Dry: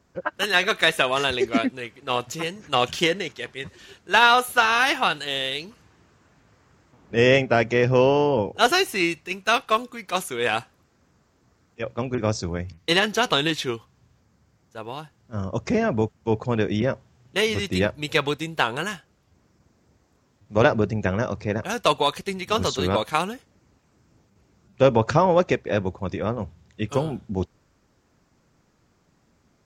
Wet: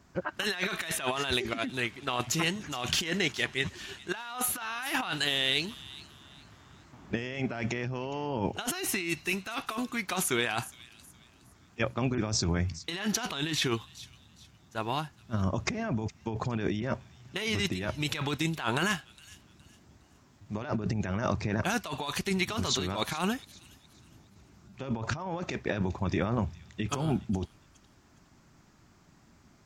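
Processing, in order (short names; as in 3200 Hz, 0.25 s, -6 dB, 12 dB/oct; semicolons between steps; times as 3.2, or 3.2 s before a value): bell 490 Hz -10 dB 0.4 oct; negative-ratio compressor -30 dBFS, ratio -1; on a send: thin delay 0.414 s, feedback 33%, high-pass 3600 Hz, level -14 dB; on the sum: gain -1.5 dB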